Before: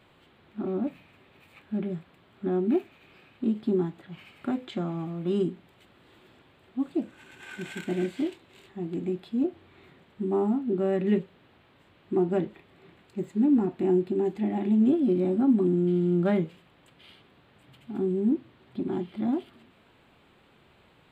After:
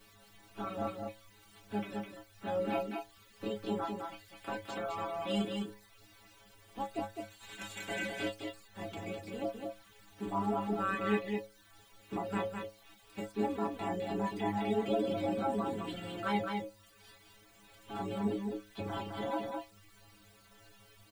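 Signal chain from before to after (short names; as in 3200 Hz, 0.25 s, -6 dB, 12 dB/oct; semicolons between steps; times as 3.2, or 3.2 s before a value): spectral limiter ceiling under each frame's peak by 23 dB; in parallel at 0 dB: limiter -22.5 dBFS, peak gain reduction 10 dB; on the sum: added noise pink -49 dBFS; metallic resonator 100 Hz, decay 0.52 s, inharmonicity 0.008; reverb removal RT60 0.76 s; on a send: echo 0.208 s -4.5 dB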